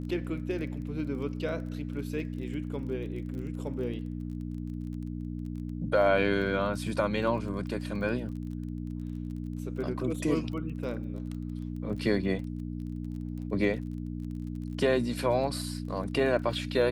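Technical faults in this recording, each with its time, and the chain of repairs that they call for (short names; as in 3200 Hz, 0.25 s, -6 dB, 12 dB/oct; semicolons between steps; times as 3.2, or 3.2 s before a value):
crackle 26/s -40 dBFS
hum 60 Hz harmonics 5 -36 dBFS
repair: de-click; de-hum 60 Hz, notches 5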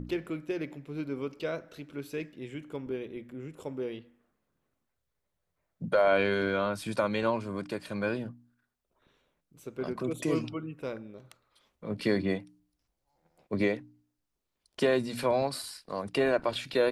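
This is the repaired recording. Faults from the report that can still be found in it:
none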